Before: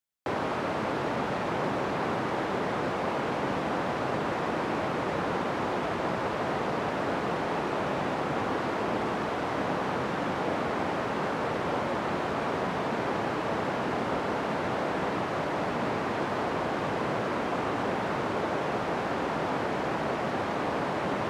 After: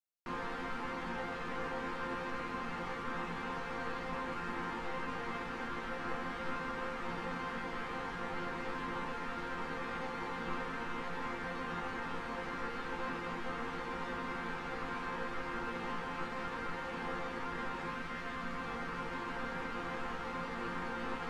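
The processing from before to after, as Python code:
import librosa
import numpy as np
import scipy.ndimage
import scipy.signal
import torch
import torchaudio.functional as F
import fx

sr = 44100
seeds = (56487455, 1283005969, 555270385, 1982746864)

y = fx.highpass(x, sr, hz=390.0, slope=12, at=(17.89, 18.59))
y = y * np.sin(2.0 * np.pi * 650.0 * np.arange(len(y)) / sr)
y = fx.resonator_bank(y, sr, root=53, chord='sus4', decay_s=0.28)
y = y * 10.0 ** (8.5 / 20.0)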